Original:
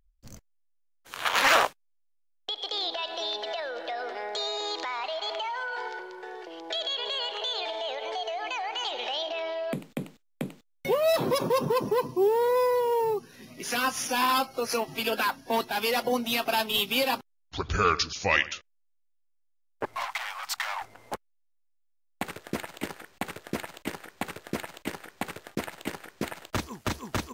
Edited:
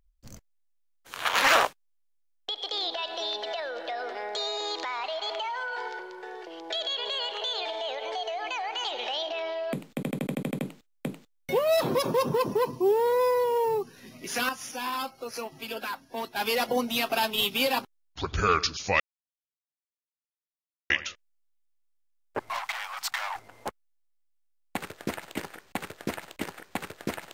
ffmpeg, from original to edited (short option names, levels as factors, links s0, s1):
-filter_complex "[0:a]asplit=12[s0][s1][s2][s3][s4][s5][s6][s7][s8][s9][s10][s11];[s0]atrim=end=10.032[s12];[s1]atrim=start=9.948:end=10.032[s13];[s2]atrim=start=9.948:end=10.032[s14];[s3]atrim=start=9.948:end=10.032[s15];[s4]atrim=start=9.948:end=10.032[s16];[s5]atrim=start=9.948:end=10.032[s17];[s6]atrim=start=9.948:end=10.032[s18];[s7]atrim=start=9.948:end=10.032[s19];[s8]atrim=start=9.948:end=13.852[s20];[s9]atrim=start=13.848:end=15.722,asetpts=PTS-STARTPTS,volume=0.422[s21];[s10]atrim=start=15.718:end=18.36,asetpts=PTS-STARTPTS,afade=t=out:st=2.638:d=0.004:c=hsin,apad=pad_dur=1.9[s22];[s11]atrim=start=18.36,asetpts=PTS-STARTPTS,afade=t=in:d=0.004:c=hsin[s23];[s12][s13]acrossfade=d=0.004:c1=hsin:c2=hsin[s24];[s24][s14]acrossfade=d=0.004:c1=hsin:c2=hsin[s25];[s25][s15]acrossfade=d=0.004:c1=hsin:c2=hsin[s26];[s26][s16]acrossfade=d=0.004:c1=hsin:c2=hsin[s27];[s27][s17]acrossfade=d=0.004:c1=hsin:c2=hsin[s28];[s28][s18]acrossfade=d=0.004:c1=hsin:c2=hsin[s29];[s29][s19]acrossfade=d=0.004:c1=hsin:c2=hsin[s30];[s30][s20]acrossfade=d=0.004:c1=hsin:c2=hsin[s31];[s31][s21]acrossfade=d=0.004:c1=hsin:c2=hsin[s32];[s22][s23]concat=n=2:v=0:a=1[s33];[s32][s33]acrossfade=d=0.004:c1=hsin:c2=hsin"